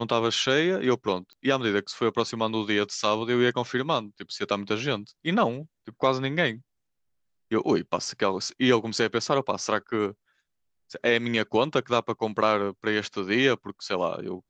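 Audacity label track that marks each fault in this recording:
1.330000	1.330000	pop -33 dBFS

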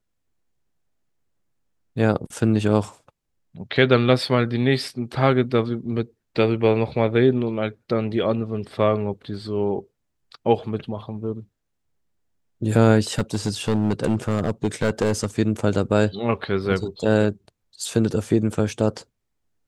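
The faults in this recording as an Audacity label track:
13.180000	15.260000	clipped -14.5 dBFS

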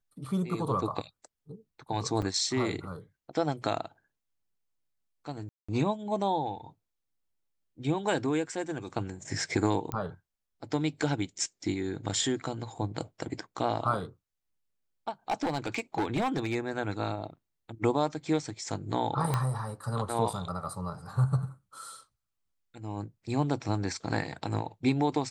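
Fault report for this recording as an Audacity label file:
2.220000	2.230000	dropout 5.1 ms
5.490000	5.680000	dropout 195 ms
9.920000	9.920000	pop -18 dBFS
15.300000	16.560000	clipped -24 dBFS
19.340000	19.340000	pop -14 dBFS

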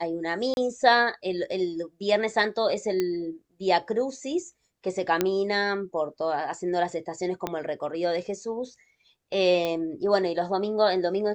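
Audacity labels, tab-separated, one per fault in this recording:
0.540000	0.570000	dropout 31 ms
3.000000	3.000000	pop -13 dBFS
5.210000	5.210000	pop -8 dBFS
7.470000	7.470000	pop -14 dBFS
9.650000	9.650000	pop -15 dBFS

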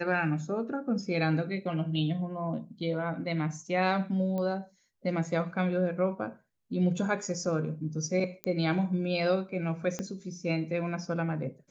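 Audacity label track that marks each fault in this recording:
4.380000	4.380000	pop -23 dBFS
8.440000	8.440000	pop -18 dBFS
9.990000	9.990000	pop -19 dBFS

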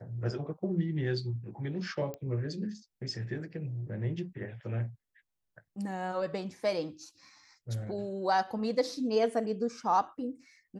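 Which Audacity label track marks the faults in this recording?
2.140000	2.140000	pop -25 dBFS

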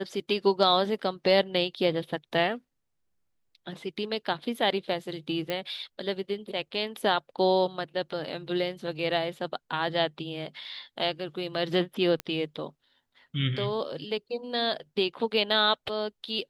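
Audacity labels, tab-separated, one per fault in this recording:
5.500000	5.500000	pop -17 dBFS
12.200000	12.200000	pop -17 dBFS

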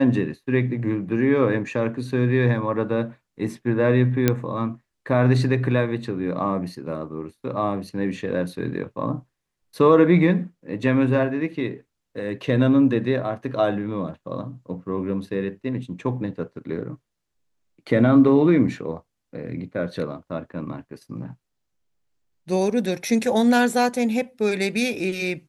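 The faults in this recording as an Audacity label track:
4.280000	4.280000	pop -4 dBFS

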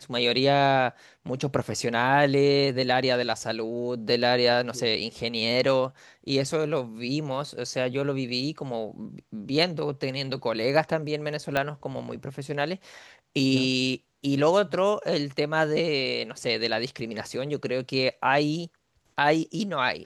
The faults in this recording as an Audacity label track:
11.570000	11.570000	pop -11 dBFS

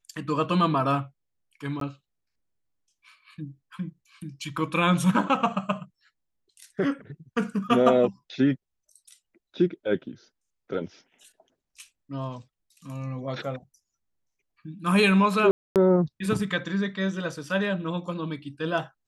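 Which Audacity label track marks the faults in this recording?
1.800000	1.810000	dropout 13 ms
15.510000	15.760000	dropout 248 ms

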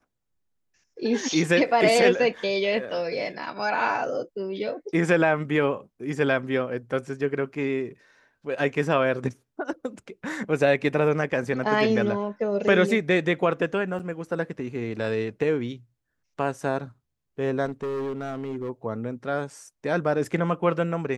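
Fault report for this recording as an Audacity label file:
13.990000	14.000000	dropout 7 ms
17.650000	18.700000	clipped -26.5 dBFS

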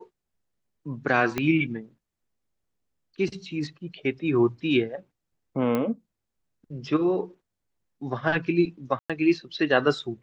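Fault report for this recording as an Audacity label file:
1.380000	1.380000	pop -12 dBFS
5.750000	5.750000	pop -14 dBFS
8.990000	9.100000	dropout 106 ms

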